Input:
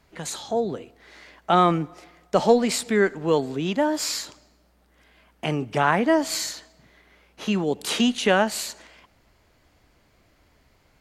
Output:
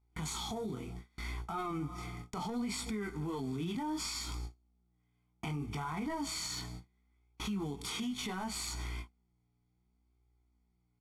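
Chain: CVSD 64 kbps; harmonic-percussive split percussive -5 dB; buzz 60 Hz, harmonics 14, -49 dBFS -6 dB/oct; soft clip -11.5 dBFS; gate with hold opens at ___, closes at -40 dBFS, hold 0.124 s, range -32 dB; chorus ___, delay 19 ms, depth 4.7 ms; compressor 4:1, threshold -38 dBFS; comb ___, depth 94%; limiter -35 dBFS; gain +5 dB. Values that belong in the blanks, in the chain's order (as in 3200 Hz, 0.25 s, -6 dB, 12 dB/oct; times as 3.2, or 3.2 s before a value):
-37 dBFS, 0.68 Hz, 0.9 ms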